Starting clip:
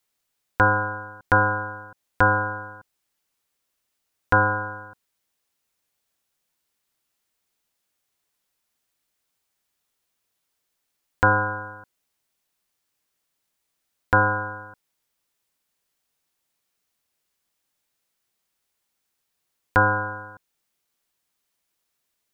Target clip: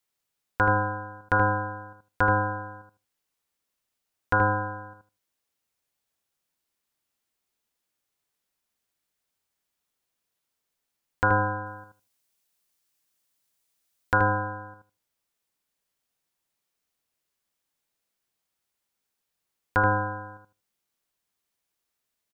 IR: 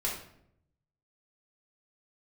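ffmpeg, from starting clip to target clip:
-filter_complex "[0:a]asettb=1/sr,asplit=3[a][b][c];[a]atrim=end=11.664[d];[b]atrim=start=11.66:end=14.18,asetpts=PTS-STARTPTS,afade=t=in:d=0.004:c=qsin,afade=t=out:st=2.516:d=0.004:c=qsin,highshelf=f=3.4k:g=8[e];[c]atrim=start=14.176[f];[d][e]acrossfade=d=0.004:c1=hsin:c2=qsin[g];[g][f]acrossfade=d=0.004:c1=qsin:c2=hsin,asplit=2[h][i];[i]adelay=78,lowpass=f=1.1k:p=1,volume=-3dB,asplit=2[j][k];[k]adelay=78,lowpass=f=1.1k:p=1,volume=0.18,asplit=2[l][m];[m]adelay=78,lowpass=f=1.1k:p=1,volume=0.18[n];[h][j][l][n]amix=inputs=4:normalize=0,volume=-5dB"

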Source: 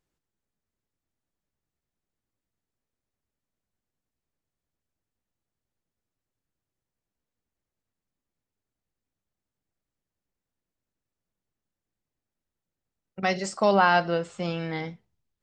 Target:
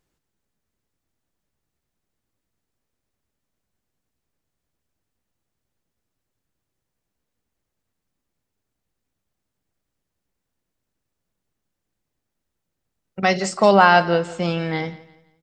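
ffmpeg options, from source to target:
-af "aecho=1:1:171|342|513:0.112|0.0381|0.013,volume=7dB"

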